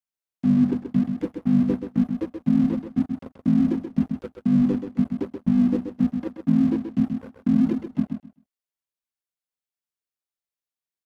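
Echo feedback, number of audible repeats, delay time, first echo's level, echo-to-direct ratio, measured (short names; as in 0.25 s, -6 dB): 18%, 2, 0.13 s, -7.0 dB, -7.0 dB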